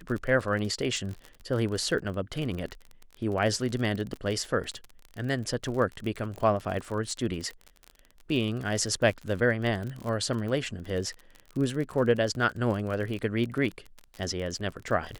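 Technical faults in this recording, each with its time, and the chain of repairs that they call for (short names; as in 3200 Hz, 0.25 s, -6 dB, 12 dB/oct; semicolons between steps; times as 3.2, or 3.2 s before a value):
crackle 44/s -33 dBFS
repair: de-click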